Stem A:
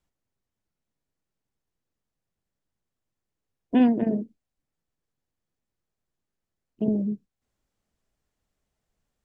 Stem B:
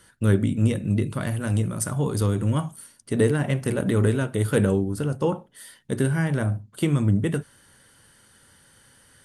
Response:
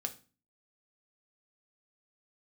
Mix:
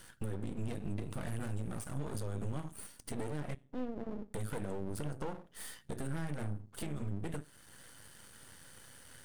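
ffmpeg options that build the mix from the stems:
-filter_complex "[0:a]bandreject=f=50:t=h:w=6,bandreject=f=100:t=h:w=6,bandreject=f=150:t=h:w=6,bandreject=f=200:t=h:w=6,alimiter=limit=0.0944:level=0:latency=1:release=60,volume=0.282,asplit=2[s0][s1];[s1]volume=0.631[s2];[1:a]acompressor=threshold=0.0501:ratio=2.5,volume=1.26,asplit=3[s3][s4][s5];[s3]atrim=end=3.55,asetpts=PTS-STARTPTS,afade=t=out:st=3.546:d=0.004:c=hsin[s6];[s4]atrim=start=3.55:end=4.34,asetpts=PTS-STARTPTS,volume=0[s7];[s5]atrim=start=4.34,asetpts=PTS-STARTPTS,afade=t=in:d=0.004:c=hsin[s8];[s6][s7][s8]concat=n=3:v=0:a=1,asplit=2[s9][s10];[s10]volume=0.251[s11];[2:a]atrim=start_sample=2205[s12];[s2][s11]amix=inputs=2:normalize=0[s13];[s13][s12]afir=irnorm=-1:irlink=0[s14];[s0][s9][s14]amix=inputs=3:normalize=0,aeval=exprs='max(val(0),0)':c=same,alimiter=level_in=1.58:limit=0.0631:level=0:latency=1:release=469,volume=0.631"

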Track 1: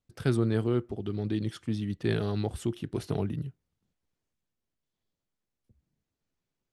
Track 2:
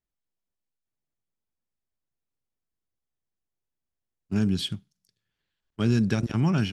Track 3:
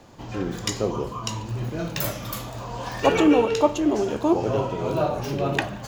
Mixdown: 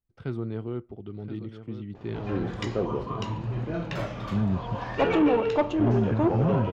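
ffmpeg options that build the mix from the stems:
-filter_complex "[0:a]bandreject=f=1700:w=7.5,agate=range=0.282:threshold=0.00282:ratio=16:detection=peak,volume=0.531,asplit=2[s0][s1];[s1]volume=0.266[s2];[1:a]lowpass=1900,lowshelf=f=150:g=11.5,volume=0.531[s3];[2:a]adelay=1950,volume=0.841[s4];[s2]aecho=0:1:1024:1[s5];[s0][s3][s4][s5]amix=inputs=4:normalize=0,lowpass=2600,asoftclip=type=tanh:threshold=0.178"

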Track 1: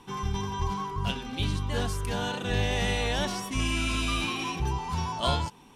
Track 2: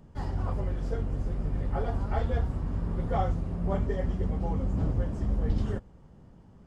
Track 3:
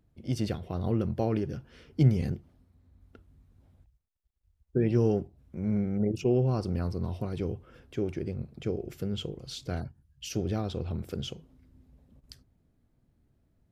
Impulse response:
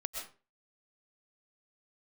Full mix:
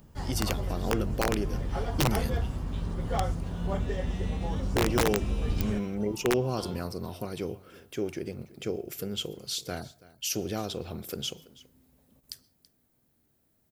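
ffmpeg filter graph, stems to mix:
-filter_complex "[0:a]tremolo=f=250:d=0.462,adelay=1350,volume=0.158[s0];[1:a]highshelf=f=2800:g=11.5,volume=0.794[s1];[2:a]aemphasis=mode=production:type=bsi,volume=1.26,asplit=3[s2][s3][s4];[s3]volume=0.075[s5];[s4]volume=0.1[s6];[3:a]atrim=start_sample=2205[s7];[s5][s7]afir=irnorm=-1:irlink=0[s8];[s6]aecho=0:1:330:1[s9];[s0][s1][s2][s8][s9]amix=inputs=5:normalize=0,aeval=exprs='(mod(6.68*val(0)+1,2)-1)/6.68':c=same"

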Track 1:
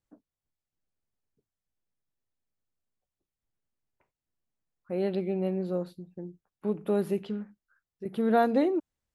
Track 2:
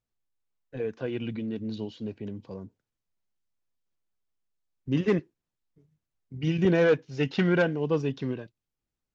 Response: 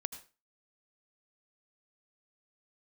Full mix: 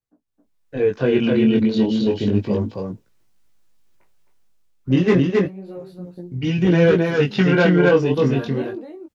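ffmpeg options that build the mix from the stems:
-filter_complex "[0:a]acompressor=threshold=0.0141:ratio=3,volume=0.668,asplit=2[s0][s1];[s1]volume=0.398[s2];[1:a]dynaudnorm=f=140:g=11:m=3.55,volume=0.531,asplit=2[s3][s4];[s4]volume=0.708[s5];[s2][s5]amix=inputs=2:normalize=0,aecho=0:1:266:1[s6];[s0][s3][s6]amix=inputs=3:normalize=0,dynaudnorm=f=170:g=5:m=5.01,flanger=delay=16.5:depth=6.4:speed=0.31"

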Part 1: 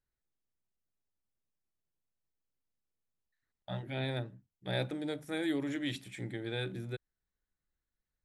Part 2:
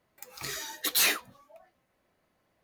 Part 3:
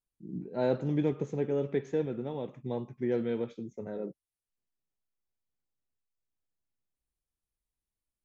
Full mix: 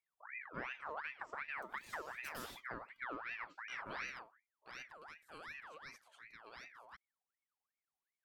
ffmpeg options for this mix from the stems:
-filter_complex "[0:a]volume=0.501,afade=t=out:st=3.74:d=0.56:silence=0.354813[s0];[1:a]highpass=1200,alimiter=limit=0.0708:level=0:latency=1:release=21,adelay=1400,volume=0.15[s1];[2:a]volume=0.447[s2];[s1][s2]amix=inputs=2:normalize=0,equalizer=f=1000:t=o:w=0.9:g=7.5,acompressor=threshold=0.0126:ratio=10,volume=1[s3];[s0][s3]amix=inputs=2:normalize=0,aeval=exprs='val(0)*sin(2*PI*1500*n/s+1500*0.5/2.7*sin(2*PI*2.7*n/s))':c=same"

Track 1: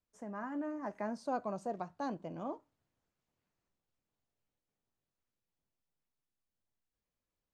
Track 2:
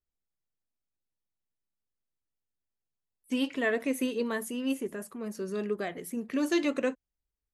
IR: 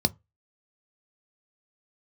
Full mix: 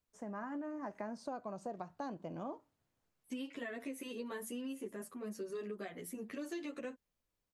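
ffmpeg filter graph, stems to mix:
-filter_complex "[0:a]volume=1.19[s0];[1:a]alimiter=level_in=1.12:limit=0.0631:level=0:latency=1:release=137,volume=0.891,asplit=2[s1][s2];[s2]adelay=10.3,afreqshift=2.2[s3];[s1][s3]amix=inputs=2:normalize=1,volume=0.75[s4];[s0][s4]amix=inputs=2:normalize=0,acompressor=threshold=0.0112:ratio=6"

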